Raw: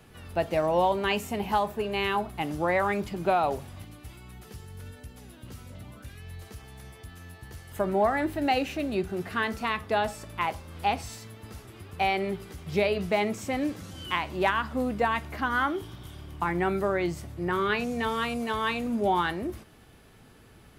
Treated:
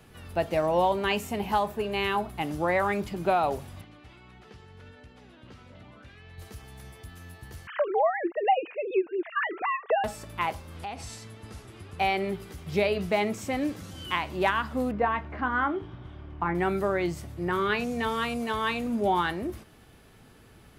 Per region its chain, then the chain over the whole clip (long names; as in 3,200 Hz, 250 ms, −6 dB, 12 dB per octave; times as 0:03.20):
0:03.81–0:06.38: low-pass filter 3,600 Hz + low-shelf EQ 180 Hz −10 dB
0:07.67–0:10.04: three sine waves on the formant tracks + multiband upward and downward compressor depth 70%
0:10.77–0:11.99: low-pass filter 11,000 Hz 24 dB per octave + downward compressor 4 to 1, threshold −34 dBFS
0:14.91–0:16.55: low-pass filter 2,000 Hz + double-tracking delay 24 ms −11 dB
whole clip: no processing